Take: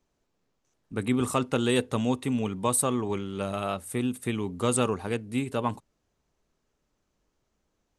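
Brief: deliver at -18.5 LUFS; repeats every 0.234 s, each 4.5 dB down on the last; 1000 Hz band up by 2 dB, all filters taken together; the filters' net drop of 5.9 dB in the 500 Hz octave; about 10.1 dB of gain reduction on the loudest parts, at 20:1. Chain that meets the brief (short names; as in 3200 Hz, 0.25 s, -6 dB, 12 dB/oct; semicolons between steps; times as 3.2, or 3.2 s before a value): bell 500 Hz -8.5 dB; bell 1000 Hz +4.5 dB; compressor 20:1, threshold -31 dBFS; feedback echo 0.234 s, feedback 60%, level -4.5 dB; gain +16.5 dB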